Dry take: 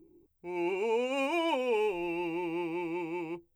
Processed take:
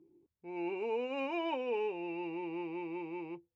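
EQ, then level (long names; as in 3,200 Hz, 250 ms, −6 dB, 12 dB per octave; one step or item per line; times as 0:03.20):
band-pass filter 110–6,600 Hz
high-frequency loss of the air 150 metres
−5.0 dB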